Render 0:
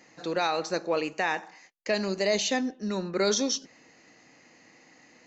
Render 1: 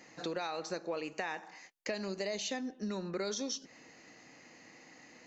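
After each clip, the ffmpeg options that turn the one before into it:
-af "acompressor=threshold=-35dB:ratio=5"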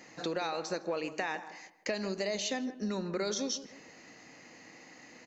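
-filter_complex "[0:a]asplit=2[a][b];[b]adelay=158,lowpass=f=1.2k:p=1,volume=-12dB,asplit=2[c][d];[d]adelay=158,lowpass=f=1.2k:p=1,volume=0.36,asplit=2[e][f];[f]adelay=158,lowpass=f=1.2k:p=1,volume=0.36,asplit=2[g][h];[h]adelay=158,lowpass=f=1.2k:p=1,volume=0.36[i];[a][c][e][g][i]amix=inputs=5:normalize=0,volume=3dB"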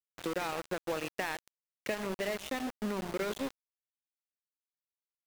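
-af "aresample=8000,aresample=44100,aeval=exprs='val(0)*gte(abs(val(0)),0.0188)':c=same"

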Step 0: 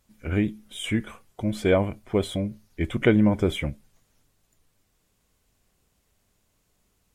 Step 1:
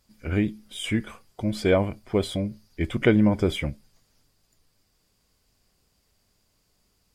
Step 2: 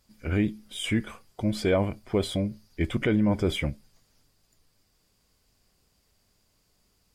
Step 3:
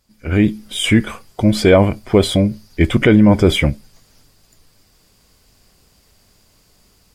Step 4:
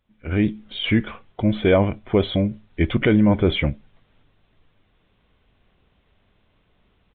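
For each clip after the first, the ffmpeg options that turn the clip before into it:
-af "equalizer=f=4.8k:t=o:w=0.24:g=12"
-af "alimiter=limit=-14.5dB:level=0:latency=1:release=19"
-af "dynaudnorm=f=230:g=3:m=11.5dB,volume=2.5dB"
-af "aresample=8000,aresample=44100,volume=-6dB"

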